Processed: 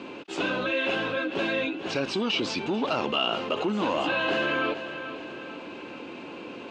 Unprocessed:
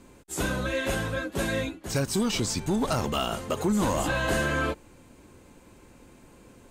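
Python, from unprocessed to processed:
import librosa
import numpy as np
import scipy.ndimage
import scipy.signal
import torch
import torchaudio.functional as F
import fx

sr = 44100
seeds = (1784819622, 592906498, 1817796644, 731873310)

y = fx.cabinet(x, sr, low_hz=290.0, low_slope=12, high_hz=4200.0, hz=(310.0, 1900.0, 2700.0), db=(4, -5, 9))
y = fx.echo_feedback(y, sr, ms=440, feedback_pct=34, wet_db=-20)
y = fx.env_flatten(y, sr, amount_pct=50)
y = F.gain(torch.from_numpy(y), -1.0).numpy()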